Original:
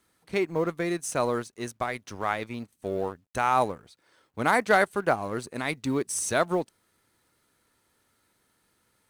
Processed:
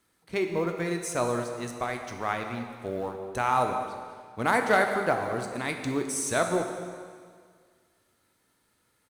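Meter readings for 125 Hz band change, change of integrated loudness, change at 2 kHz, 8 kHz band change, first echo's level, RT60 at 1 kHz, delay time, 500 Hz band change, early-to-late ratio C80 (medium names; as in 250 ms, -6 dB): 0.0 dB, -1.0 dB, -0.5 dB, -0.5 dB, -15.0 dB, 1.9 s, 210 ms, -0.5 dB, 6.5 dB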